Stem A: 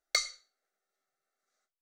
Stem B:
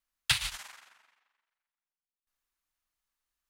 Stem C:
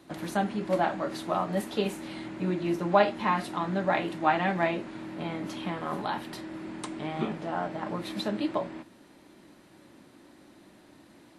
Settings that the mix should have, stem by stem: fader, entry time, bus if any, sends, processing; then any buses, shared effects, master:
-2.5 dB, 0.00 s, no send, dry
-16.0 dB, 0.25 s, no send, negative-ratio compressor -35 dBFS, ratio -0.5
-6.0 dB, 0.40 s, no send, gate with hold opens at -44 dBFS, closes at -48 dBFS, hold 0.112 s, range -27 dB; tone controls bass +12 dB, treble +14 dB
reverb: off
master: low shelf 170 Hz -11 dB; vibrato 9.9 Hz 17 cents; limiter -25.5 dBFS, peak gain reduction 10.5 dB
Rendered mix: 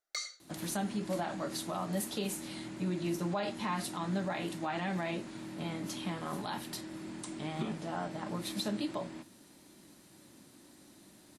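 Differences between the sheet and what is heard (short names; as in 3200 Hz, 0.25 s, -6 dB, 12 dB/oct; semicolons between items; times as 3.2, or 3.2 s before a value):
stem B -16.0 dB -> -22.5 dB; stem C: missing gate with hold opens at -44 dBFS, closes at -48 dBFS, hold 0.112 s, range -27 dB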